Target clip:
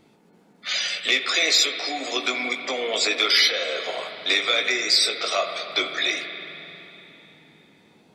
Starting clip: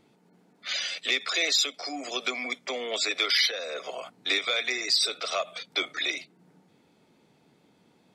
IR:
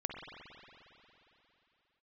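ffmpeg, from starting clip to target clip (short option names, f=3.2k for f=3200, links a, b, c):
-filter_complex "[0:a]asplit=2[a][b];[1:a]atrim=start_sample=2205,adelay=19[c];[b][c]afir=irnorm=-1:irlink=0,volume=-5dB[d];[a][d]amix=inputs=2:normalize=0,volume=4.5dB"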